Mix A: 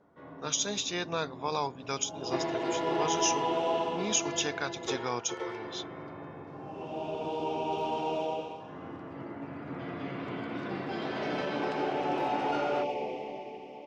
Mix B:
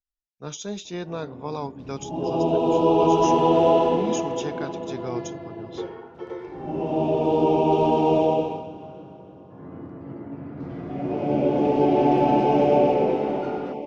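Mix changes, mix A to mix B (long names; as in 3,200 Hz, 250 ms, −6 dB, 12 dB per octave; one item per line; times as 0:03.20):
first sound: entry +0.90 s
second sound +11.5 dB
master: add tilt shelving filter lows +8 dB, about 690 Hz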